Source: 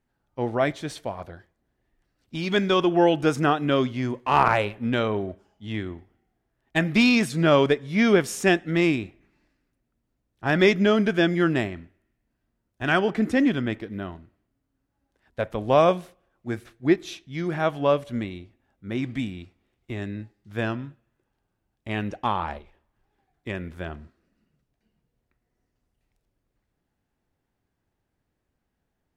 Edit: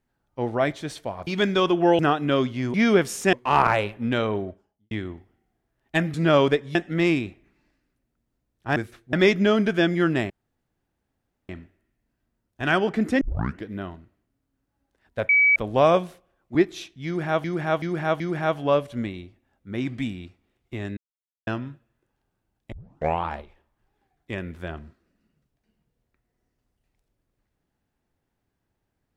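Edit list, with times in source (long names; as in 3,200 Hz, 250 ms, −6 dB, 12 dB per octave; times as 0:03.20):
0:01.27–0:02.41: remove
0:03.13–0:03.39: remove
0:05.17–0:05.72: fade out and dull
0:06.95–0:07.32: remove
0:07.93–0:08.52: move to 0:04.14
0:11.70: splice in room tone 1.19 s
0:13.42: tape start 0.43 s
0:15.50: insert tone 2,280 Hz −14 dBFS 0.27 s
0:16.49–0:16.86: move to 0:10.53
0:17.37–0:17.75: repeat, 4 plays
0:20.14–0:20.64: silence
0:21.89: tape start 0.52 s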